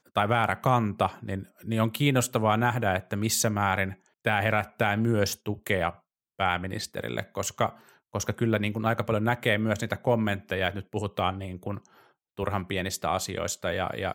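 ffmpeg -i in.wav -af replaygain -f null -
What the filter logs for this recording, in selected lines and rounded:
track_gain = +8.3 dB
track_peak = 0.241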